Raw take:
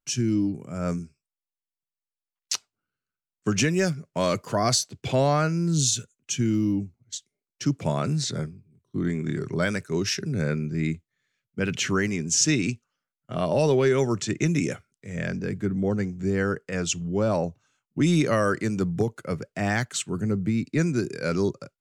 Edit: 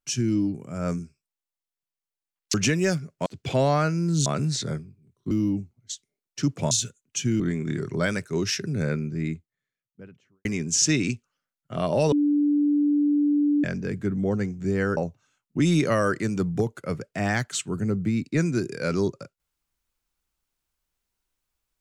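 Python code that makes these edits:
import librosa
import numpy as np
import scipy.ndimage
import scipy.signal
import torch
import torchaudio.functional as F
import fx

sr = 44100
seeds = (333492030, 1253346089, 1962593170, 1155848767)

y = fx.studio_fade_out(x, sr, start_s=10.31, length_s=1.73)
y = fx.edit(y, sr, fx.cut(start_s=2.54, length_s=0.95),
    fx.cut(start_s=4.21, length_s=0.64),
    fx.swap(start_s=5.85, length_s=0.69, other_s=7.94, other_length_s=1.05),
    fx.bleep(start_s=13.71, length_s=1.52, hz=292.0, db=-18.0),
    fx.cut(start_s=16.56, length_s=0.82), tone=tone)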